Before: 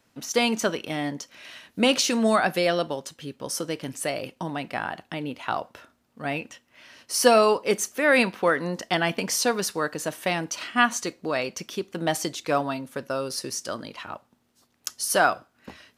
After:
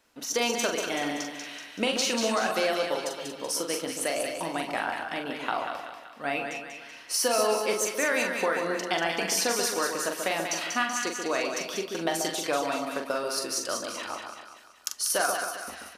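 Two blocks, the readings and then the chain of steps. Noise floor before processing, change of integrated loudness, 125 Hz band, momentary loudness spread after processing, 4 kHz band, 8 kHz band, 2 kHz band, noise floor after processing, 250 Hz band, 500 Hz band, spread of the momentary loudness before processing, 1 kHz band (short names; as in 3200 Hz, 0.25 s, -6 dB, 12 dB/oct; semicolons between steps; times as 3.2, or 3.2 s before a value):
-68 dBFS, -3.0 dB, -10.5 dB, 11 LU, -1.0 dB, +0.5 dB, -2.5 dB, -48 dBFS, -6.0 dB, -3.5 dB, 16 LU, -3.5 dB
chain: bell 130 Hz -15 dB 1.4 oct; compressor, threshold -24 dBFS, peak gain reduction 10.5 dB; doubler 42 ms -6 dB; on a send: split-band echo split 1200 Hz, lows 0.135 s, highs 0.19 s, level -5 dB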